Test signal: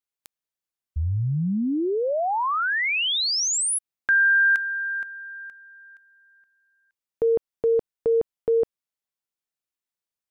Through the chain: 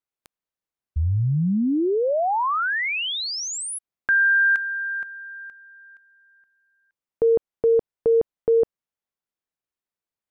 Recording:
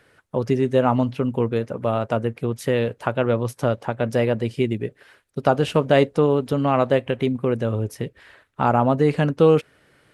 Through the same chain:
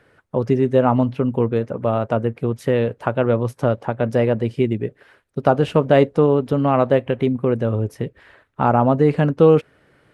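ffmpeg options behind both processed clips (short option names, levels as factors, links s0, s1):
-af "highshelf=f=2600:g=-10,volume=1.41"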